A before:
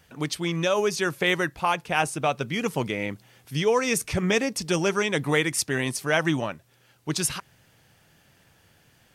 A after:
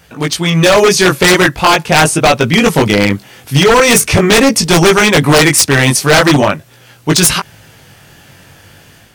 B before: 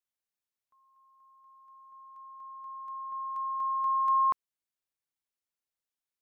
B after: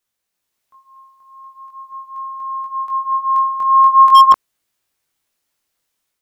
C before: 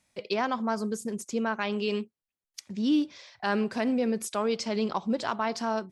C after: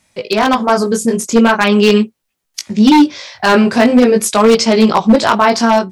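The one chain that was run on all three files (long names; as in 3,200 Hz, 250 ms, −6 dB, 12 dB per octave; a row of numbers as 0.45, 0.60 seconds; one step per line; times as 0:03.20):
chorus effect 0.42 Hz, delay 17.5 ms, depth 4.4 ms
wave folding −23.5 dBFS
automatic gain control gain up to 5 dB
normalise the peak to −1.5 dBFS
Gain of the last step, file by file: +17.0, +17.0, +17.0 decibels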